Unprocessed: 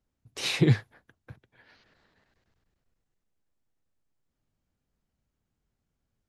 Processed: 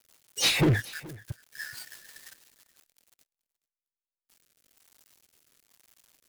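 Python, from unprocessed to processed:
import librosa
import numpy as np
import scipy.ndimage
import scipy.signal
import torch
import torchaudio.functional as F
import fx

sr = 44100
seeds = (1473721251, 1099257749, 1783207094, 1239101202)

y = x + 0.5 * 10.0 ** (-24.0 / 20.0) * np.diff(np.sign(x), prepend=np.sign(x[:1]))
y = fx.noise_reduce_blind(y, sr, reduce_db=22)
y = fx.leveller(y, sr, passes=5)
y = fx.rotary_switch(y, sr, hz=6.0, then_hz=1.1, switch_at_s=3.02)
y = y + 10.0 ** (-21.5 / 20.0) * np.pad(y, (int(426 * sr / 1000.0), 0))[:len(y)]
y = y * librosa.db_to_amplitude(-6.5)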